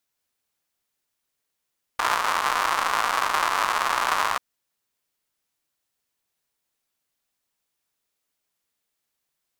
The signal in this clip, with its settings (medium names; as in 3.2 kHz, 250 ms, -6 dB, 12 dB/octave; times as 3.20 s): rain from filtered ticks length 2.39 s, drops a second 210, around 1.1 kHz, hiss -26 dB